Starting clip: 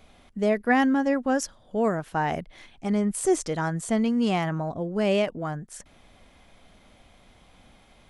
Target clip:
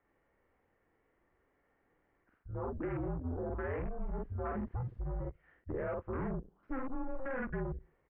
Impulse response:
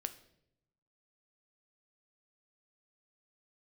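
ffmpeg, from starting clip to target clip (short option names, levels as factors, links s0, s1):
-filter_complex "[0:a]areverse,asplit=2[s0][s1];[1:a]atrim=start_sample=2205[s2];[s1][s2]afir=irnorm=-1:irlink=0,volume=0.316[s3];[s0][s3]amix=inputs=2:normalize=0,volume=11.2,asoftclip=hard,volume=0.0891,lowshelf=f=180:g=-7,bandreject=f=60:t=h:w=6,bandreject=f=120:t=h:w=6,bandreject=f=180:t=h:w=6,bandreject=f=240:t=h:w=6,bandreject=f=300:t=h:w=6,bandreject=f=360:t=h:w=6,asplit=2[s4][s5];[s5]adelay=47,volume=0.794[s6];[s4][s6]amix=inputs=2:normalize=0,asoftclip=type=tanh:threshold=0.0596,afwtdn=0.02,acompressor=threshold=0.0251:ratio=6,highpass=f=150:t=q:w=0.5412,highpass=f=150:t=q:w=1.307,lowpass=f=2300:t=q:w=0.5176,lowpass=f=2300:t=q:w=0.7071,lowpass=f=2300:t=q:w=1.932,afreqshift=-260,volume=0.75"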